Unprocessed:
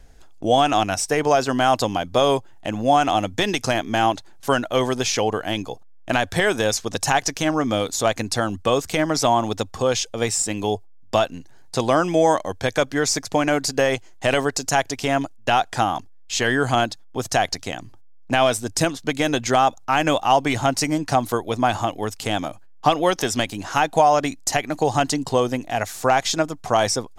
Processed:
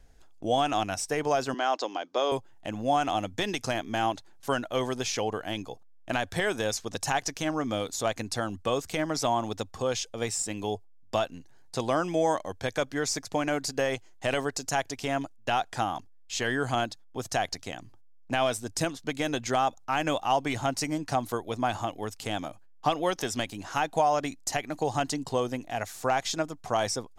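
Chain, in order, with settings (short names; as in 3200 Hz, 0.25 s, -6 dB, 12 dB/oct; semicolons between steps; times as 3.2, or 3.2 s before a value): 1.54–2.32 Chebyshev band-pass 320–6100 Hz, order 3; gain -8.5 dB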